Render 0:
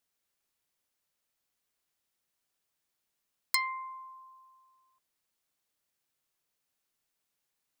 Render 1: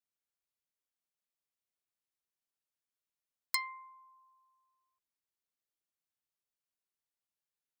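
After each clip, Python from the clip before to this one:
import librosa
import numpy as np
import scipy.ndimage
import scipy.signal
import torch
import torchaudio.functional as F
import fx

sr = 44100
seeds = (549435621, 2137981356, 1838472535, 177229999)

y = fx.upward_expand(x, sr, threshold_db=-44.0, expansion=1.5)
y = y * librosa.db_to_amplitude(-3.5)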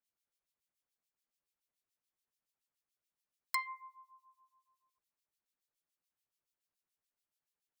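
y = fx.harmonic_tremolo(x, sr, hz=7.0, depth_pct=100, crossover_hz=2100.0)
y = y * librosa.db_to_amplitude(5.0)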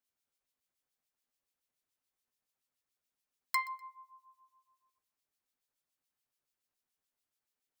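y = fx.echo_feedback(x, sr, ms=124, feedback_pct=31, wet_db=-22)
y = fx.rev_fdn(y, sr, rt60_s=0.3, lf_ratio=0.95, hf_ratio=0.35, size_ms=23.0, drr_db=9.5)
y = y * librosa.db_to_amplitude(1.5)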